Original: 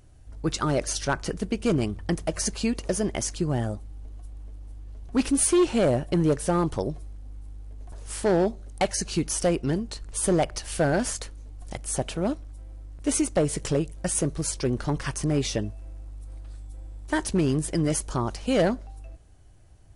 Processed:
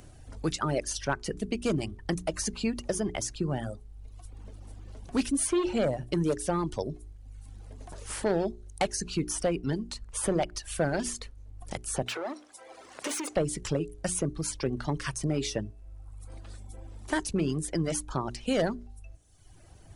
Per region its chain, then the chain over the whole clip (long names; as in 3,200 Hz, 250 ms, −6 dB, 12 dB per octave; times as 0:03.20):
0:12.06–0:13.36: mid-hump overdrive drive 23 dB, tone 5,000 Hz, clips at −15.5 dBFS + high-pass filter 390 Hz + downward compressor 10 to 1, threshold −27 dBFS
whole clip: reverb reduction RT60 1 s; mains-hum notches 60/120/180/240/300/360/420 Hz; multiband upward and downward compressor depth 40%; level −3 dB